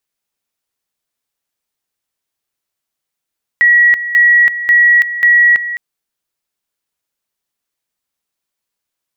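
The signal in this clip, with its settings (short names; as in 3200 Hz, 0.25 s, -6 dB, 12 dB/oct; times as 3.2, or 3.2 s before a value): two-level tone 1920 Hz -5 dBFS, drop 12.5 dB, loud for 0.33 s, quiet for 0.21 s, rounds 4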